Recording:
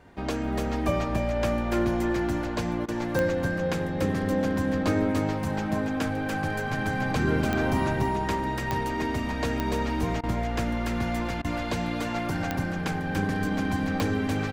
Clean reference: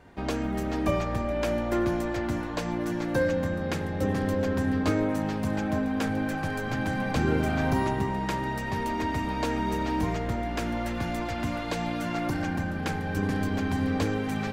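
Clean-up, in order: de-click; interpolate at 2.86/10.21/11.42, 23 ms; inverse comb 0.291 s -4.5 dB

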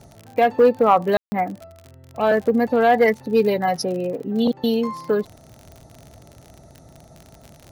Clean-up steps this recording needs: de-click; room tone fill 1.17–1.32

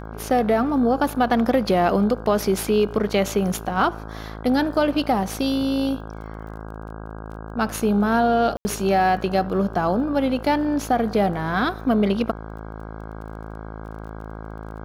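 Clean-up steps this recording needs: de-click; de-hum 54 Hz, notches 30; room tone fill 8.57–8.65

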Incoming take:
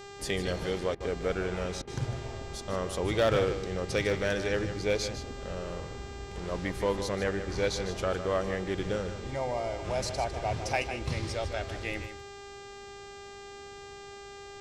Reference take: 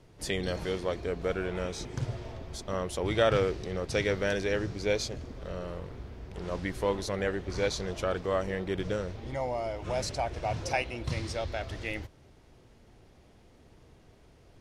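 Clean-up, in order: clip repair -19 dBFS; de-hum 400.2 Hz, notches 20; interpolate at 0.95/1.82, 52 ms; inverse comb 0.153 s -10.5 dB

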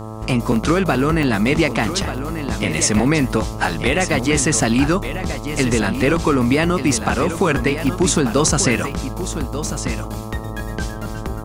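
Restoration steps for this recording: de-hum 109.4 Hz, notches 12; interpolate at 0.56/1.23/2.18/5.82/7.87/8.18/8.92/9.33, 1.3 ms; inverse comb 1.189 s -10 dB

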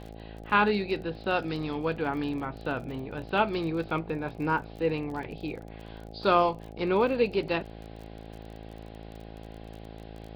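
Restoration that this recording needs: de-click; de-hum 54.7 Hz, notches 15

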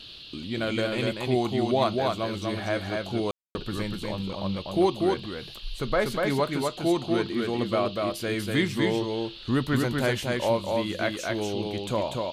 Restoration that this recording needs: room tone fill 3.31–3.55; noise print and reduce 30 dB; inverse comb 0.243 s -3 dB

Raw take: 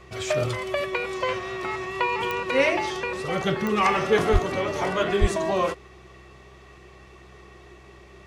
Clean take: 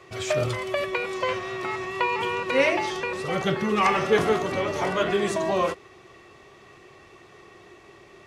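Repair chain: de-click; de-hum 64 Hz, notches 3; de-plosive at 4.32/5.2

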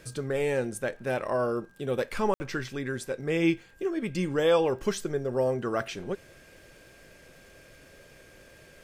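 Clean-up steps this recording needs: de-click; notch 1600 Hz, Q 30; room tone fill 2.34–2.4

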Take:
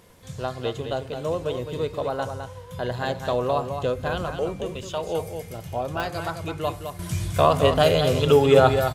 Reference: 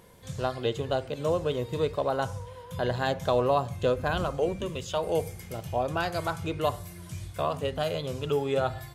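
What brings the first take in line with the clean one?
de-click; expander -30 dBFS, range -21 dB; inverse comb 0.211 s -7.5 dB; gain correction -11 dB, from 6.99

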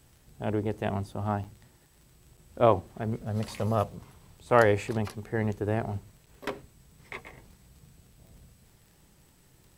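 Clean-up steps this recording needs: de-click; interpolate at 1.44/2.37/6.26, 6.6 ms

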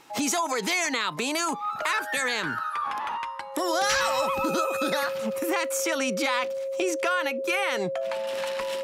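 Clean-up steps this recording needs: clip repair -14 dBFS; notch 540 Hz, Q 30

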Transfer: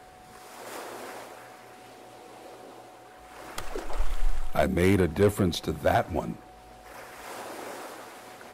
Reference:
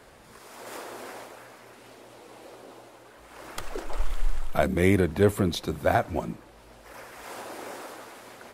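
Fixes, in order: clip repair -13.5 dBFS; notch 740 Hz, Q 30

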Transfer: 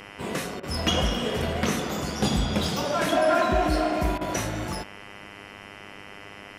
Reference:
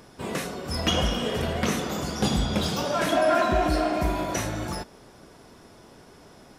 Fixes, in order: de-hum 100.9 Hz, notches 31; notch 2000 Hz, Q 30; interpolate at 0.6/4.18, 30 ms

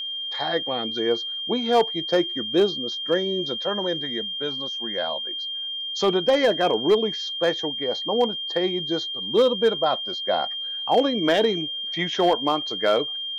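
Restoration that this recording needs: clip repair -11.5 dBFS; notch 3200 Hz, Q 30

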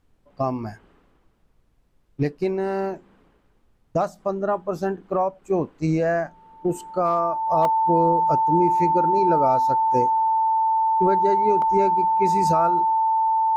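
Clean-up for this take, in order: notch 890 Hz, Q 30; interpolate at 3.68/7.65/11.62, 1.2 ms; expander -52 dBFS, range -21 dB

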